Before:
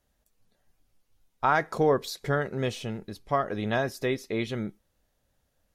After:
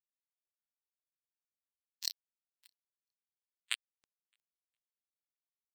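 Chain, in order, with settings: spectral swells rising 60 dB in 1.70 s; steep high-pass 2200 Hz 48 dB/oct; bit-crush 4-bit; on a send: swung echo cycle 1.025 s, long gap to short 1.5:1, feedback 42%, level -11.5 dB; on the sum: spectral expander 4:1; gain +6 dB

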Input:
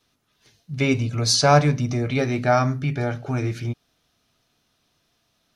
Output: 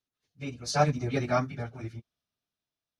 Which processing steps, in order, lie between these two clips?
Doppler pass-by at 2.37, 9 m/s, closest 6.9 m; plain phase-vocoder stretch 0.54×; upward expander 1.5:1, over -38 dBFS

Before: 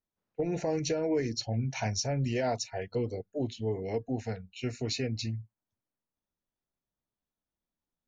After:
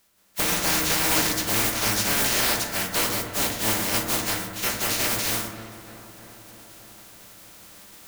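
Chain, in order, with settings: spectral contrast lowered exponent 0.11; reverse; upward compressor, threshold -44 dBFS; reverse; darkening echo 0.307 s, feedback 72%, low-pass 2600 Hz, level -22.5 dB; power-law curve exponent 0.7; reverb RT60 1.2 s, pre-delay 5 ms, DRR 1 dB; gain +1 dB

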